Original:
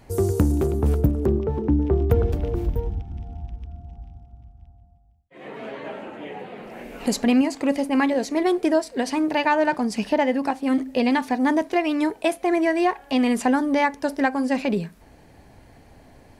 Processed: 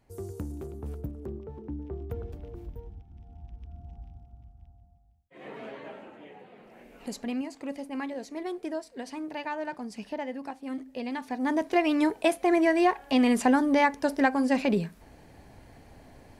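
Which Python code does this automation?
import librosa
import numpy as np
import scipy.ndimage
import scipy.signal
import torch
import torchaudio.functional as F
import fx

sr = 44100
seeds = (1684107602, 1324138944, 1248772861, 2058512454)

y = fx.gain(x, sr, db=fx.line((3.08, -17.0), (3.85, -5.0), (5.52, -5.0), (6.38, -14.0), (11.1, -14.0), (11.79, -2.0)))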